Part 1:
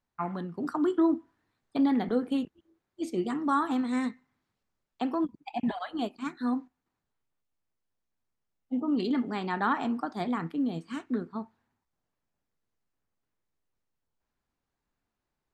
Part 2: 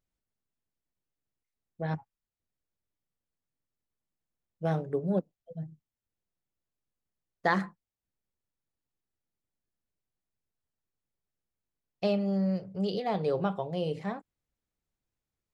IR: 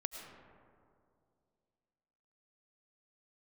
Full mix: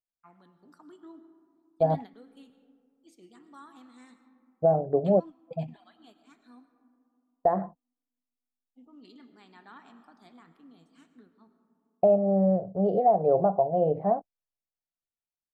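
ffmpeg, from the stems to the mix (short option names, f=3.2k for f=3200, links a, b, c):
-filter_complex "[0:a]highshelf=f=2.2k:g=11.5,adelay=50,volume=-19dB,asplit=2[a][b];[b]volume=-10.5dB[c];[1:a]agate=range=-27dB:threshold=-44dB:ratio=16:detection=peak,lowpass=f=690:t=q:w=6.8,volume=3dB,asplit=2[d][e];[e]apad=whole_len=687153[f];[a][f]sidechaingate=range=-12dB:threshold=-36dB:ratio=16:detection=peak[g];[2:a]atrim=start_sample=2205[h];[c][h]afir=irnorm=-1:irlink=0[i];[g][d][i]amix=inputs=3:normalize=0,alimiter=limit=-12.5dB:level=0:latency=1:release=313"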